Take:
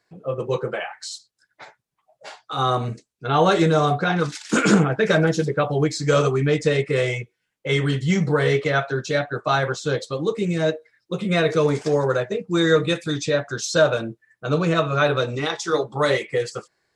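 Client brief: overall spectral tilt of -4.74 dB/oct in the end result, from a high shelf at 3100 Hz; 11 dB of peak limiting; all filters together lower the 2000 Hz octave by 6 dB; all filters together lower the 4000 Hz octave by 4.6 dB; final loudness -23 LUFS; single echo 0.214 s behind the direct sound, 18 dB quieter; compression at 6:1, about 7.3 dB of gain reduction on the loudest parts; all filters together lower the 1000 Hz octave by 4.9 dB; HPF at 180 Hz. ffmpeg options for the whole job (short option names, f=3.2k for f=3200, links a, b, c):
-af "highpass=180,equalizer=f=1k:t=o:g=-5.5,equalizer=f=2k:t=o:g=-6,highshelf=f=3.1k:g=5,equalizer=f=4k:t=o:g=-7,acompressor=threshold=-22dB:ratio=6,alimiter=limit=-23.5dB:level=0:latency=1,aecho=1:1:214:0.126,volume=9.5dB"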